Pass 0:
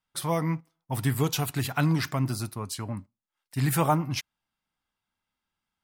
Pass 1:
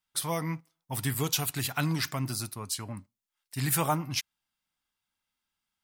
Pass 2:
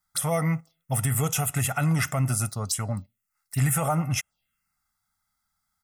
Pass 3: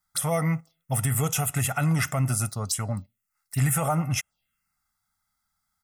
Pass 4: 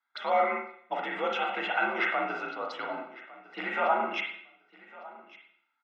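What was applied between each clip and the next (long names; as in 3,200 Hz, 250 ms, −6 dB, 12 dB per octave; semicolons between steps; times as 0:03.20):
high-shelf EQ 2,100 Hz +9.5 dB; level −5.5 dB
phaser swept by the level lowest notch 490 Hz, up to 4,300 Hz, full sweep at −31 dBFS; brickwall limiter −24 dBFS, peak gain reduction 9.5 dB; comb filter 1.5 ms, depth 63%; level +8 dB
no processing that can be heard
repeating echo 1,155 ms, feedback 22%, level −20 dB; convolution reverb RT60 0.60 s, pre-delay 35 ms, DRR 0 dB; single-sideband voice off tune +56 Hz 310–3,600 Hz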